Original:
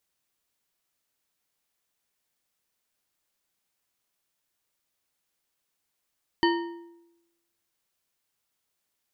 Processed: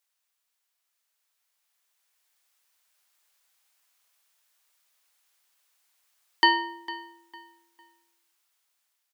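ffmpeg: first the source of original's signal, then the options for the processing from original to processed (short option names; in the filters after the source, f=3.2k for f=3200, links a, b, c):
-f lavfi -i "aevalsrc='0.112*pow(10,-3*t/0.95)*sin(2*PI*340*t)+0.0794*pow(10,-3*t/0.701)*sin(2*PI*937.4*t)+0.0562*pow(10,-3*t/0.573)*sin(2*PI*1837.4*t)+0.0398*pow(10,-3*t/0.493)*sin(2*PI*3037.2*t)+0.0282*pow(10,-3*t/0.437)*sin(2*PI*4535.6*t)':d=1.55:s=44100"
-filter_complex "[0:a]highpass=800,dynaudnorm=f=810:g=5:m=9dB,asplit=2[a][b];[b]adelay=453,lowpass=f=4.2k:p=1,volume=-16dB,asplit=2[c][d];[d]adelay=453,lowpass=f=4.2k:p=1,volume=0.3,asplit=2[e][f];[f]adelay=453,lowpass=f=4.2k:p=1,volume=0.3[g];[a][c][e][g]amix=inputs=4:normalize=0"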